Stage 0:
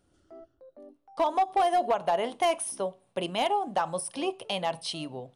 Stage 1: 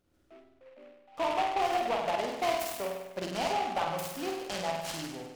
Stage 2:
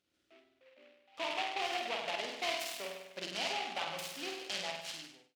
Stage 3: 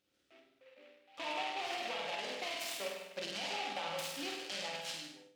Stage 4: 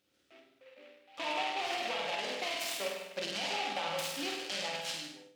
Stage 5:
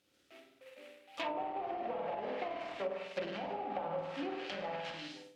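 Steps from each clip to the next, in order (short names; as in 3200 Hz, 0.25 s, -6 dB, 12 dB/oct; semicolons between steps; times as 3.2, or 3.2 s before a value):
on a send: flutter echo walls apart 8.5 m, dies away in 0.98 s; on the sum: noise-modulated delay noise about 1600 Hz, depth 0.062 ms; gain -6 dB
ending faded out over 0.72 s; weighting filter D; gain -9 dB
limiter -29.5 dBFS, peak gain reduction 9 dB; on a send at -4 dB: reverb RT60 0.50 s, pre-delay 3 ms
HPF 45 Hz; gain +4 dB
modulation noise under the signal 18 dB; treble ducked by the level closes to 680 Hz, closed at -31 dBFS; gain +1.5 dB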